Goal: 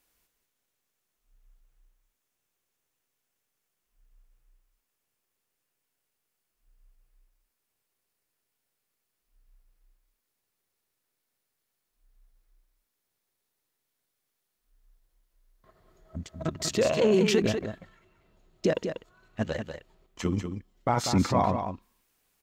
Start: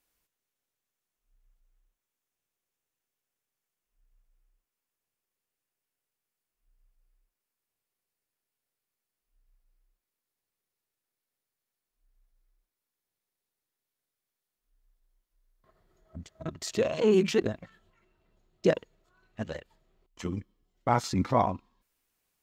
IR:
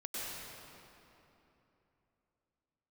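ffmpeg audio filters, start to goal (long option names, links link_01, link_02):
-filter_complex "[0:a]alimiter=limit=-20dB:level=0:latency=1:release=28,asplit=2[link_01][link_02];[link_02]aecho=0:1:192:0.422[link_03];[link_01][link_03]amix=inputs=2:normalize=0,volume=5.5dB"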